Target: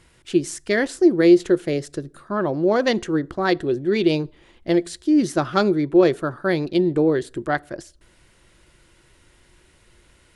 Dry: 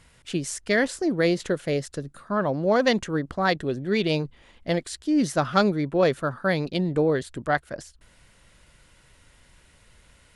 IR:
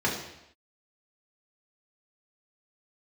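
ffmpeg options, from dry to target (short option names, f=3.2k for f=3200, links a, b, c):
-filter_complex "[0:a]equalizer=f=350:w=5.1:g=13.5,asplit=2[a][b];[1:a]atrim=start_sample=2205,asetrate=88200,aresample=44100[c];[b][c]afir=irnorm=-1:irlink=0,volume=-26.5dB[d];[a][d]amix=inputs=2:normalize=0"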